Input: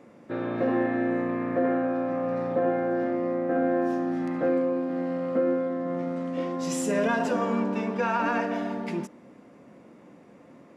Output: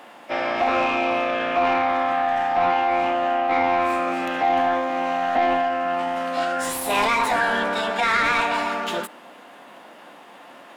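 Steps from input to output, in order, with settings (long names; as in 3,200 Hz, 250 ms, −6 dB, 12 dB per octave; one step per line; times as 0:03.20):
RIAA equalisation recording
mid-hump overdrive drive 20 dB, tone 1,200 Hz, clips at −11.5 dBFS
formants moved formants +6 semitones
level +2 dB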